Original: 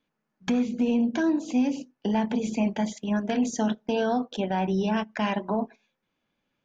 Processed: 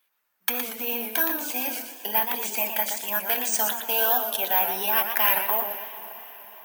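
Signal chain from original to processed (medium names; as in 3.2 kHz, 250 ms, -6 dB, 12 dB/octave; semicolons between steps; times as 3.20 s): high-pass 1 kHz 12 dB/octave; careless resampling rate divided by 3×, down none, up zero stuff; echo that smears into a reverb 506 ms, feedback 50%, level -16 dB; modulated delay 119 ms, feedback 41%, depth 160 cents, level -7 dB; trim +7 dB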